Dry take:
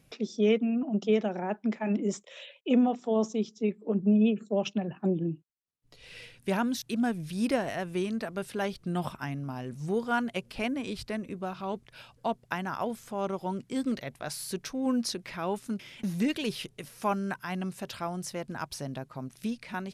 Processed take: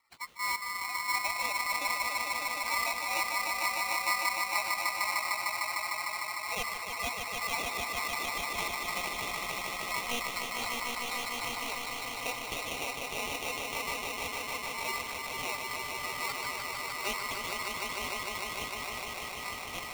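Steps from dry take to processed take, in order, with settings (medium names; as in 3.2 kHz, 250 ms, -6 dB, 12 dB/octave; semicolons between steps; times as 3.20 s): coarse spectral quantiser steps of 30 dB; bass shelf 250 Hz -12 dB; frequency shift +170 Hz; in parallel at -7 dB: sample-and-hold 11×; on the sum: brick-wall FIR low-pass 3.2 kHz; on a send: echo with a slow build-up 151 ms, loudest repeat 5, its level -5 dB; on the sum: polarity switched at an audio rate 1.6 kHz; trim -7.5 dB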